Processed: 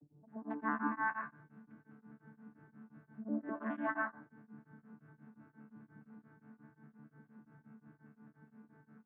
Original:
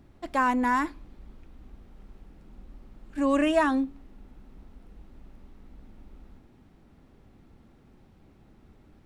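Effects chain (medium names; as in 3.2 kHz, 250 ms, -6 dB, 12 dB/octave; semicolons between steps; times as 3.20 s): vocoder on a broken chord bare fifth, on D3, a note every 205 ms; bass shelf 190 Hz -5 dB; reverse; compression 12:1, threshold -33 dBFS, peak gain reduction 14 dB; reverse; resonant low-pass 1.6 kHz, resonance Q 3.5; bands offset in time lows, highs 270 ms, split 580 Hz; on a send at -2.5 dB: reverberation RT60 0.35 s, pre-delay 83 ms; on the sum: tremolo of two beating tones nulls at 5.7 Hz; trim -1 dB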